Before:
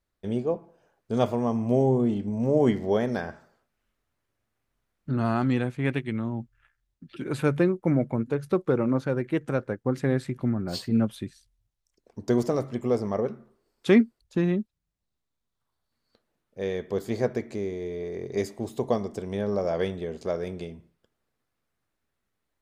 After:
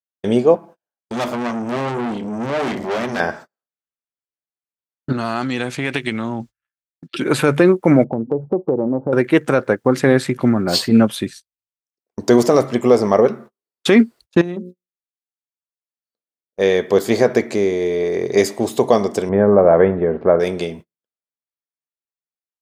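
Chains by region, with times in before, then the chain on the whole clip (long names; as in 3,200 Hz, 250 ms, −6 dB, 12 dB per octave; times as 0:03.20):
0:00.55–0:03.20: parametric band 450 Hz −7 dB 0.31 octaves + mains-hum notches 50/100/150/200/250/300 Hz + tube saturation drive 33 dB, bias 0.7
0:05.12–0:07.20: parametric band 5,500 Hz +9.5 dB 2 octaves + downward compressor 12 to 1, threshold −29 dBFS + one half of a high-frequency compander decoder only
0:08.04–0:09.13: elliptic low-pass filter 830 Hz, stop band 60 dB + downward compressor 3 to 1, threshold −29 dBFS
0:14.41–0:16.60: parametric band 2,100 Hz −7.5 dB 2 octaves + mains-hum notches 60/120/180/240/300/360/420/480/540 Hz + downward compressor 10 to 1, threshold −34 dBFS
0:19.29–0:20.40: low-pass filter 1,700 Hz 24 dB per octave + low-shelf EQ 200 Hz +6.5 dB
whole clip: high-pass filter 380 Hz 6 dB per octave; noise gate −51 dBFS, range −39 dB; boost into a limiter +18 dB; level −1 dB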